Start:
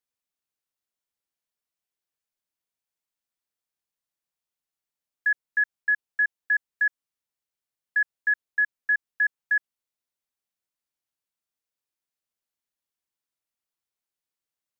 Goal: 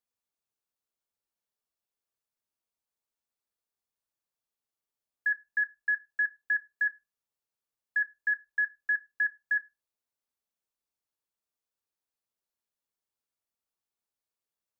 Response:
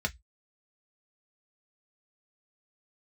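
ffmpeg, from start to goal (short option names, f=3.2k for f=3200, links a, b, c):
-filter_complex "[0:a]asplit=2[a][b];[1:a]atrim=start_sample=2205,asetrate=29547,aresample=44100[c];[b][c]afir=irnorm=-1:irlink=0,volume=-16dB[d];[a][d]amix=inputs=2:normalize=0,volume=-2.5dB"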